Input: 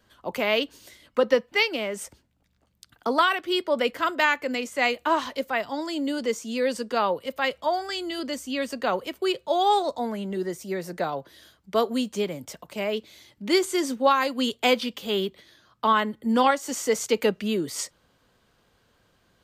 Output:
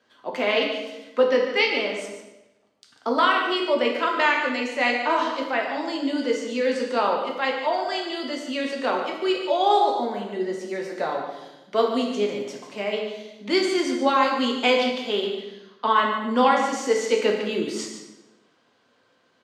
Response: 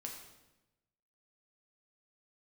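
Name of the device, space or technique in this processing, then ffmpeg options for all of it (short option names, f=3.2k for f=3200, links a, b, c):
supermarket ceiling speaker: -filter_complex "[0:a]highpass=250,lowpass=5.6k[a];[1:a]atrim=start_sample=2205[b];[a][b]afir=irnorm=-1:irlink=0,aecho=1:1:145:0.299,volume=5dB"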